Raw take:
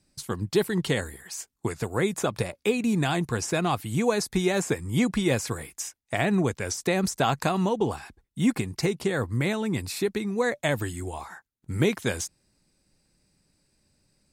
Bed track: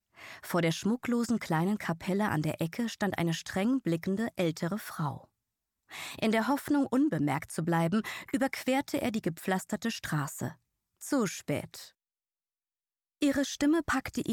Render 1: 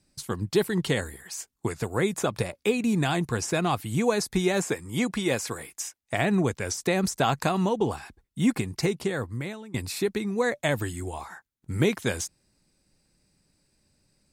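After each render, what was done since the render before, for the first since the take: 4.64–6.02 s: bass shelf 150 Hz -11.5 dB; 8.92–9.74 s: fade out, to -21.5 dB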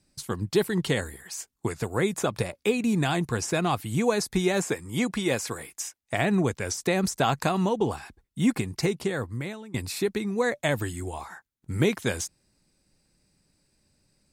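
no audible change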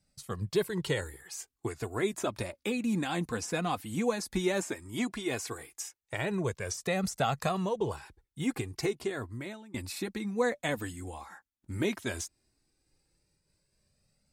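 flange 0.14 Hz, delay 1.4 ms, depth 2.7 ms, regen -26%; random flutter of the level, depth 50%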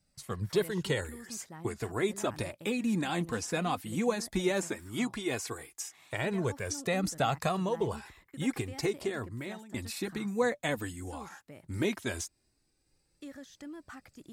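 add bed track -18.5 dB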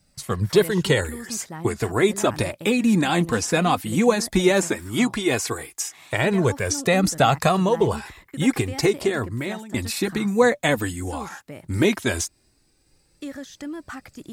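trim +11.5 dB

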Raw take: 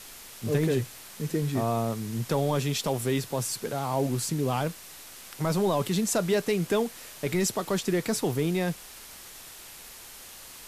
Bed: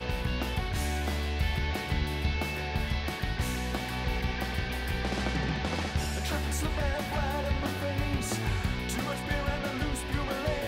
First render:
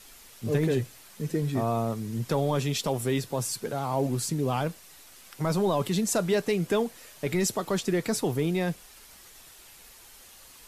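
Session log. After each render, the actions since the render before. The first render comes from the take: noise reduction 7 dB, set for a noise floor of -46 dBFS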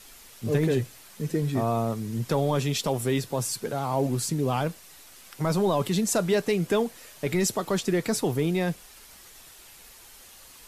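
trim +1.5 dB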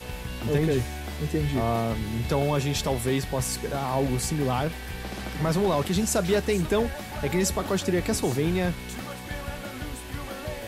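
add bed -4 dB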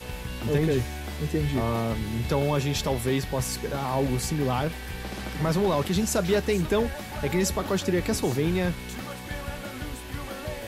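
dynamic bell 8.7 kHz, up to -4 dB, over -49 dBFS, Q 2.4; band-stop 700 Hz, Q 17

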